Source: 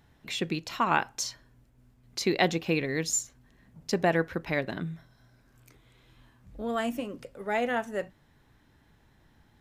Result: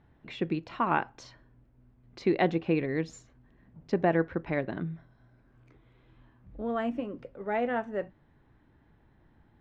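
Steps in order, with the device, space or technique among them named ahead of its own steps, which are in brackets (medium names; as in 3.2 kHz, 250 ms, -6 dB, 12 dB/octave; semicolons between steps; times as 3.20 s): phone in a pocket (low-pass 3.3 kHz 12 dB/octave; peaking EQ 330 Hz +3 dB 0.31 oct; treble shelf 2.3 kHz -10.5 dB)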